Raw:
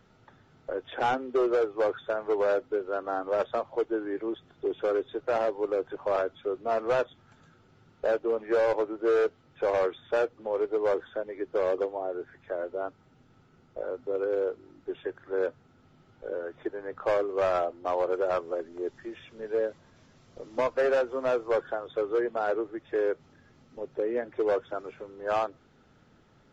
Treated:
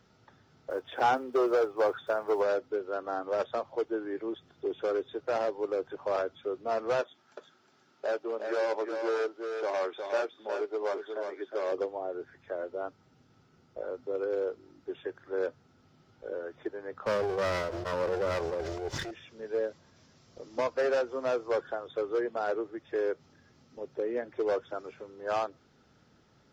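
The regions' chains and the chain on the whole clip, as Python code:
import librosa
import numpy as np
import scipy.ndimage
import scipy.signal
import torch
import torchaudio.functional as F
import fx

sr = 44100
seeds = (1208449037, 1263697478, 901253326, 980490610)

y = fx.chain(x, sr, fx.block_float(bits=7),
    fx.dynamic_eq(hz=940.0, q=0.82, threshold_db=-39.0, ratio=4.0, max_db=5), at=(0.7, 2.43))
y = fx.chain(y, sr, fx.highpass(hz=310.0, slope=12),
    fx.notch(hz=490.0, q=6.5),
    fx.echo_single(ms=361, db=-6.0), at=(7.01, 11.72))
y = fx.chain(y, sr, fx.lower_of_two(delay_ms=2.0),
    fx.sustainer(db_per_s=22.0), at=(17.06, 19.11))
y = scipy.signal.sosfilt(scipy.signal.butter(2, 42.0, 'highpass', fs=sr, output='sos'), y)
y = fx.peak_eq(y, sr, hz=5200.0, db=8.0, octaves=0.68)
y = F.gain(torch.from_numpy(y), -3.0).numpy()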